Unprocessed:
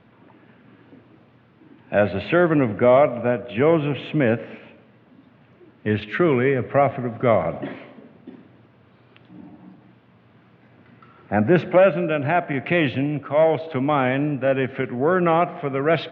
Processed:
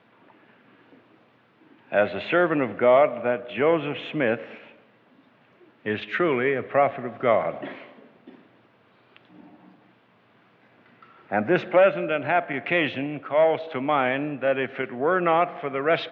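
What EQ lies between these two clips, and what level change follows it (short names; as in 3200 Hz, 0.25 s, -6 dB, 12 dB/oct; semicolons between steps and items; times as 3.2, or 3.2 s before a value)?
HPF 500 Hz 6 dB/oct; 0.0 dB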